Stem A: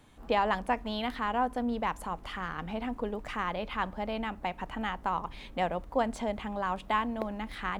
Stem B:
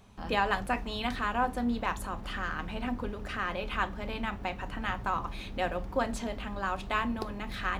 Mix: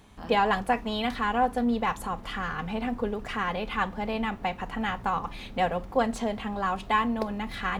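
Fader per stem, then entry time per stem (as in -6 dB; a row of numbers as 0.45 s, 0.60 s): +2.0 dB, -1.0 dB; 0.00 s, 0.00 s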